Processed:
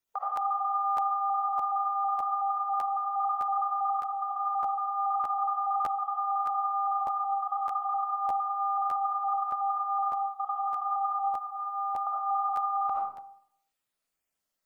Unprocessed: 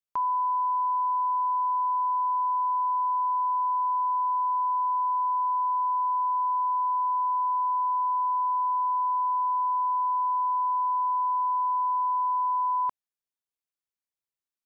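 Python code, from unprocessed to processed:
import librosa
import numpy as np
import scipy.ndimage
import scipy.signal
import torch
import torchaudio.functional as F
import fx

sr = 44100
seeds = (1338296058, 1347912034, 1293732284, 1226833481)

y = fx.spec_dropout(x, sr, seeds[0], share_pct=37)
y = fx.differentiator(y, sr, at=(11.22, 12.07))
y = fx.over_compress(y, sr, threshold_db=-33.0, ratio=-1.0)
y = y * np.sin(2.0 * np.pi * 210.0 * np.arange(len(y)) / sr)
y = fx.doubler(y, sr, ms=15.0, db=-12, at=(0.53, 0.98))
y = fx.rev_freeverb(y, sr, rt60_s=0.71, hf_ratio=0.5, predelay_ms=35, drr_db=-3.0)
y = fx.buffer_crackle(y, sr, first_s=0.35, period_s=0.61, block=512, kind='repeat')
y = y * librosa.db_to_amplitude(3.5)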